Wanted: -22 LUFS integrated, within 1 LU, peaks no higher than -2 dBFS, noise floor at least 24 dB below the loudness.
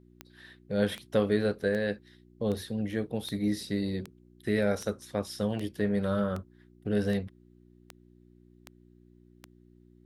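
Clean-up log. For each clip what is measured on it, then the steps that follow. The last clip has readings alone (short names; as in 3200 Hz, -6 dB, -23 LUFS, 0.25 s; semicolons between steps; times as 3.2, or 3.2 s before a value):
clicks 13; hum 60 Hz; harmonics up to 360 Hz; hum level -60 dBFS; loudness -31.0 LUFS; peak -13.0 dBFS; loudness target -22.0 LUFS
-> de-click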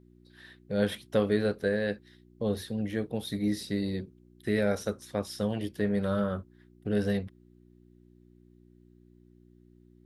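clicks 0; hum 60 Hz; harmonics up to 360 Hz; hum level -60 dBFS
-> de-hum 60 Hz, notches 6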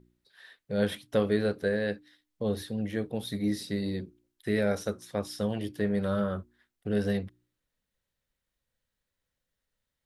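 hum none; loudness -31.0 LUFS; peak -13.0 dBFS; loudness target -22.0 LUFS
-> gain +9 dB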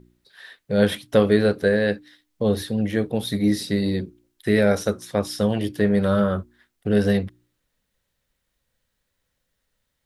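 loudness -22.0 LUFS; peak -4.0 dBFS; noise floor -76 dBFS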